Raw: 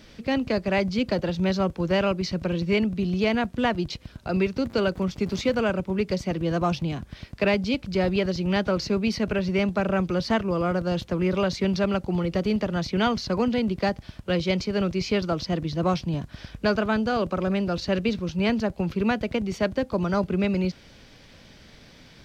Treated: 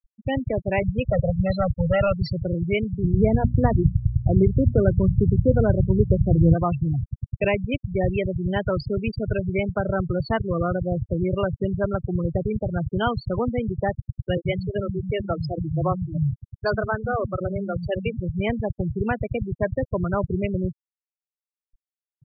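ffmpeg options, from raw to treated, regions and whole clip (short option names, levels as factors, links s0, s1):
-filter_complex "[0:a]asettb=1/sr,asplit=3[s0][s1][s2];[s0]atrim=end=0.824[s3];[s1]atrim=start=0.82:end=2.32,asetpts=PTS-STARTPTS,afade=t=in:d=0.004:c=qsin,afade=t=out:st=1.496:d=0.004:c=qsin,aecho=1:1:1.5:0.98,atrim=end_sample=66150,volume=7.08,asoftclip=hard,volume=0.141[s4];[s2]atrim=start=2.316[s5];[s3][s4]acrossfade=d=0.004:c1=hsin:c2=qsin[s6];[s6][s5]acrossfade=d=0.004:c1=qsin:c2=hsin,asettb=1/sr,asplit=3[s7][s8][s9];[s7]atrim=end=3.044[s10];[s8]atrim=start=3.04:end=6.54,asetpts=PTS-STARTPTS,afade=t=in:d=0.004:c=qsin,afade=t=out:st=3.496:d=0.004:c=qsin,lowpass=f=1100:p=1,lowshelf=f=310:g=11.5,bandreject=f=60:t=h:w=6,bandreject=f=120:t=h:w=6,bandreject=f=180:t=h:w=6,bandreject=f=240:t=h:w=6,bandreject=f=300:t=h:w=6[s11];[s9]atrim=start=6.536[s12];[s10][s11]acrossfade=d=0.004:c1=hsin:c2=qsin[s13];[s13][s12]acrossfade=d=0.004:c1=qsin:c2=hsin,asettb=1/sr,asplit=3[s14][s15][s16];[s14]atrim=end=14.374[s17];[s15]atrim=start=14.37:end=18.17,asetpts=PTS-STARTPTS,afade=t=in:d=0.004:c=qsin,afade=t=out:st=3.796:d=0.004:c=qsin,agate=range=0.0224:threshold=0.0251:ratio=3:release=100:detection=peak,highpass=59,acrossover=split=240[s18][s19];[s18]adelay=80[s20];[s20][s19]amix=inputs=2:normalize=0,atrim=end_sample=167580[s21];[s16]atrim=start=18.166[s22];[s17][s21]acrossfade=d=0.004:c1=hsin:c2=qsin[s23];[s23][s22]acrossfade=d=0.004:c1=qsin:c2=hsin,lowshelf=f=160:t=q:w=3:g=7,afftfilt=real='re*gte(hypot(re,im),0.112)':imag='im*gte(hypot(re,im),0.112)':win_size=1024:overlap=0.75,volume=1.19"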